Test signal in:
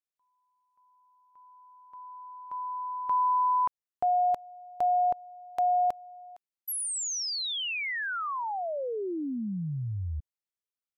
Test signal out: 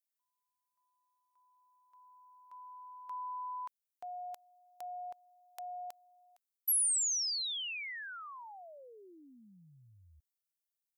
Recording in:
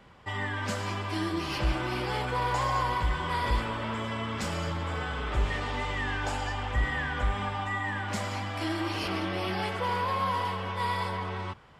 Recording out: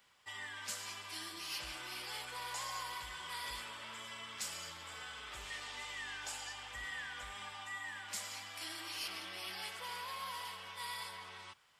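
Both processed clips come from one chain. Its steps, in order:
first-order pre-emphasis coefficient 0.97
level +1 dB

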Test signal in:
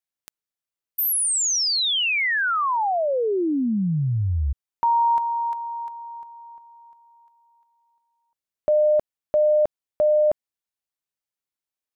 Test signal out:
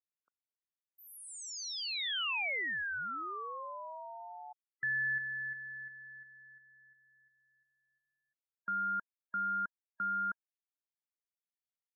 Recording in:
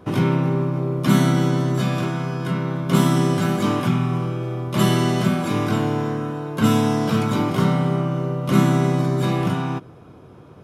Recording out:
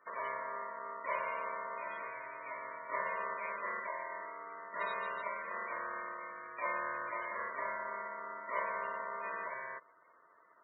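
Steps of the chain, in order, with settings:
low-pass filter 1,900 Hz 12 dB per octave
spectral peaks only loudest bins 32
low-shelf EQ 200 Hz −9.5 dB
ring modulation 800 Hz
first difference
level +4.5 dB

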